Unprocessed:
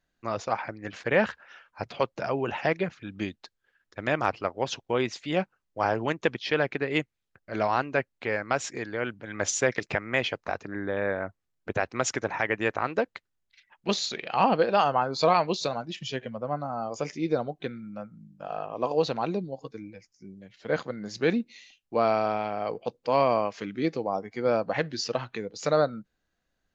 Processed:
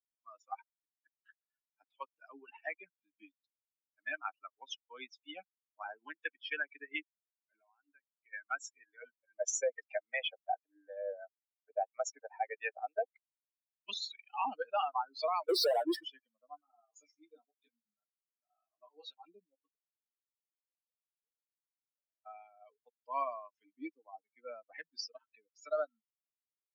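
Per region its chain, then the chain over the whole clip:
0.61–1.26 bell 66 Hz +13 dB 0.9 oct + flipped gate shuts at -26 dBFS, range -35 dB
7.52–8.33 expander -37 dBFS + compressor, threshold -32 dBFS
9.02–13.08 band shelf 610 Hz +11 dB 1 oct + harmonic tremolo 2.9 Hz, depth 50%, crossover 600 Hz
15.49–16.05 EQ curve 120 Hz 0 dB, 220 Hz -29 dB, 310 Hz +10 dB, 500 Hz +14 dB, 1100 Hz -2 dB, 1600 Hz +3 dB, 2700 Hz -26 dB, 4600 Hz -1 dB, 7400 Hz -17 dB, 11000 Hz -29 dB + power-law curve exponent 0.5
16.61–19.25 high shelf 4200 Hz +10.5 dB + detuned doubles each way 27 cents
19.75–22.26 Butterworth band-pass 540 Hz, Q 4.4 + compressor 12:1, threshold -43 dBFS
whole clip: per-bin expansion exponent 3; limiter -24 dBFS; steep high-pass 320 Hz 48 dB/oct

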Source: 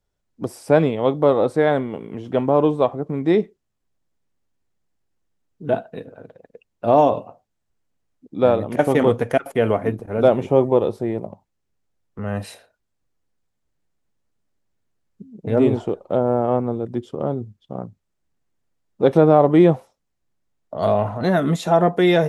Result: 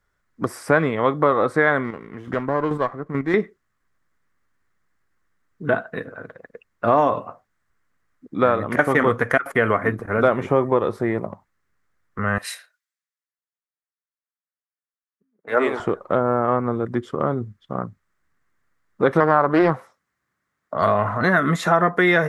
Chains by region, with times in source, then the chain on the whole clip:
1.84–3.34 chopper 2.3 Hz, depth 60%, duty 15% + running maximum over 5 samples
12.38–15.8 HPF 570 Hz + three-band expander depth 70%
19.2–20.82 HPF 90 Hz + Doppler distortion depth 0.34 ms
whole clip: band shelf 1500 Hz +13 dB 1.2 oct; compressor 2:1, threshold -20 dBFS; gain +2.5 dB

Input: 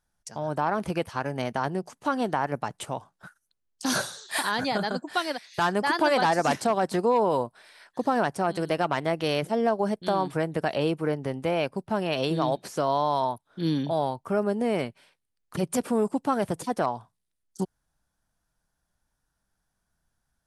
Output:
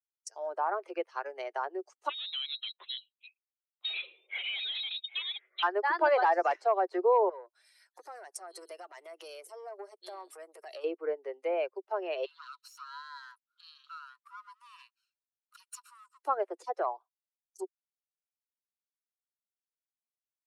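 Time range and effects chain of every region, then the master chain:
2.09–5.63 HPF 62 Hz 24 dB/oct + hard clip -28 dBFS + inverted band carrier 4000 Hz
7.29–10.84 high shelf 5500 Hz +8 dB + compressor 8:1, threshold -28 dBFS + core saturation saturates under 1000 Hz
12.25–16.23 minimum comb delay 0.73 ms + compressor 2.5:1, threshold -29 dBFS + rippled Chebyshev high-pass 960 Hz, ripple 6 dB
whole clip: per-bin expansion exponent 1.5; treble ducked by the level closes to 2000 Hz, closed at -27.5 dBFS; steep high-pass 360 Hz 72 dB/oct

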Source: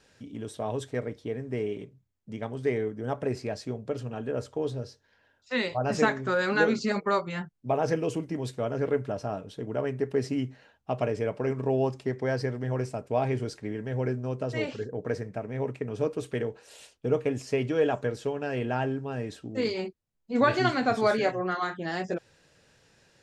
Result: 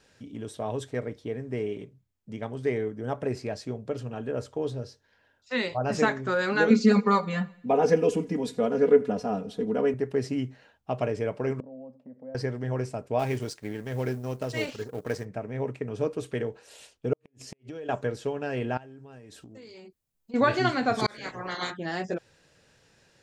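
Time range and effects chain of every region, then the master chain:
6.7–9.94 comb 4.1 ms, depth 81% + small resonant body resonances 200/420 Hz, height 7 dB + feedback echo 84 ms, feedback 54%, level -22.5 dB
11.6–12.35 compressor 5:1, threshold -33 dBFS + double band-pass 370 Hz, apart 1.1 oct
13.19–15.25 G.711 law mismatch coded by A + high shelf 2900 Hz +9 dB
17.13–17.89 bell 1100 Hz -4 dB 1.8 oct + compressor 10:1, threshold -35 dBFS + flipped gate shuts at -28 dBFS, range -37 dB
18.77–20.34 high shelf 7000 Hz +10.5 dB + compressor 20:1, threshold -43 dBFS
20.98–21.7 spectral limiter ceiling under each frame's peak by 22 dB + bell 2700 Hz -7.5 dB 0.21 oct + auto swell 0.676 s
whole clip: dry

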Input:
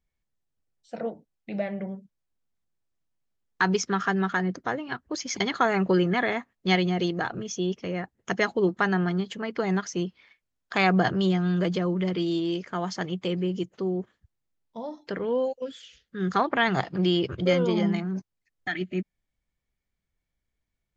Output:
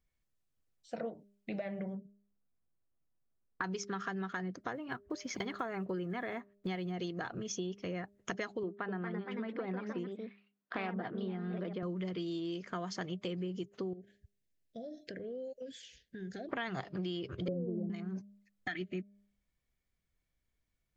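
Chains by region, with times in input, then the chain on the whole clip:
1.95–3.64 LPF 1700 Hz + mismatched tape noise reduction decoder only
4.73–6.94 block floating point 7-bit + high shelf 3300 Hz -12 dB
8.63–11.83 echoes that change speed 0.252 s, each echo +2 st, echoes 2, each echo -6 dB + Chebyshev high-pass 220 Hz + air absorption 370 m
13.93–16.49 elliptic band-stop 690–1600 Hz + dynamic EQ 3100 Hz, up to -5 dB, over -55 dBFS, Q 1.5 + compressor 4:1, threshold -41 dBFS
17.48–17.9 steep low-pass 630 Hz + low shelf 420 Hz +10.5 dB
whole clip: notch 860 Hz, Q 12; de-hum 201.6 Hz, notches 3; compressor 6:1, threshold -35 dBFS; gain -1 dB

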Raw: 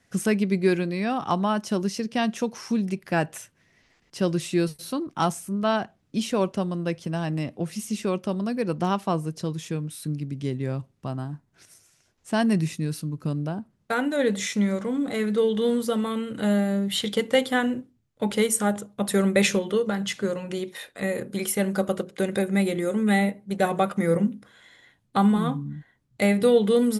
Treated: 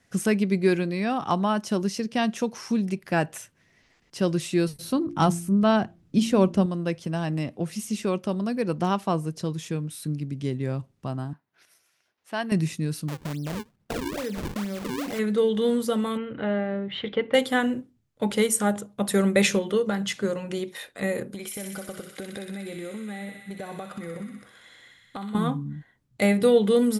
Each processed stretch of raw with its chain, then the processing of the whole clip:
4.73–6.66 low shelf 300 Hz +10 dB + de-hum 57.16 Hz, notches 6
11.33–12.52 HPF 920 Hz 6 dB/oct + bell 7600 Hz -14.5 dB 1 oct
13.08–15.19 compressor, threshold -27 dBFS + decimation with a swept rate 39×, swing 160% 2.3 Hz
16.17–17.34 LPF 2800 Hz 24 dB/oct + bell 200 Hz -6.5 dB 0.42 oct
21.34–25.35 compressor 10:1, threshold -32 dBFS + thin delay 62 ms, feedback 81%, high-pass 1700 Hz, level -3.5 dB
whole clip: dry

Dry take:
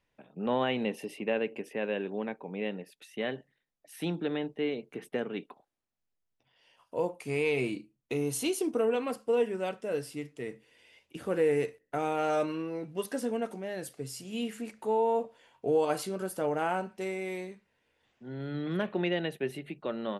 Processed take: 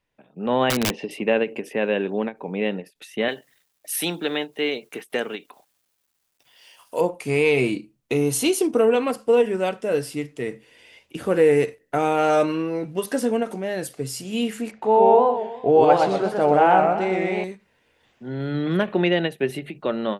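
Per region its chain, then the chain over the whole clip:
0.7–1.11 LPF 4900 Hz 24 dB/oct + wrapped overs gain 24.5 dB
3.28–7.01 RIAA curve recording + requantised 12-bit, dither none
14.71–17.44 LPF 3900 Hz + bell 750 Hz +8 dB 0.39 oct + warbling echo 0.123 s, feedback 41%, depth 190 cents, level -3.5 dB
whole clip: AGC gain up to 10 dB; ending taper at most 310 dB/s

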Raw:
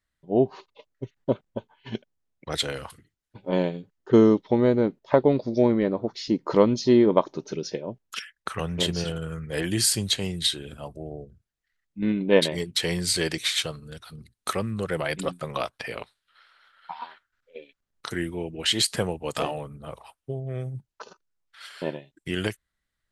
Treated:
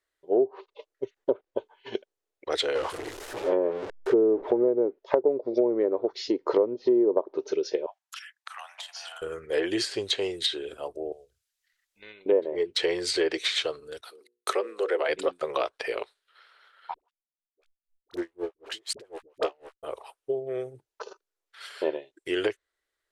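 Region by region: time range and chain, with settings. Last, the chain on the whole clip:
2.75–4.68 zero-crossing step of -27 dBFS + high shelf 2300 Hz -8.5 dB
7.86–9.22 steep high-pass 700 Hz 72 dB/oct + compressor 12:1, threshold -36 dBFS
11.12–12.26 passive tone stack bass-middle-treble 10-0-10 + three-band squash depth 40%
14.01–15.09 gate -51 dBFS, range -20 dB + HPF 330 Hz 24 dB/oct + notches 60/120/180/240/300/360/420/480/540 Hz
16.94–19.83 backlash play -28.5 dBFS + dispersion highs, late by 63 ms, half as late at 610 Hz + dB-linear tremolo 4 Hz, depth 37 dB
whole clip: resonant low shelf 270 Hz -13.5 dB, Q 3; treble ducked by the level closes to 770 Hz, closed at -13.5 dBFS; compressor 3:1, threshold -21 dBFS

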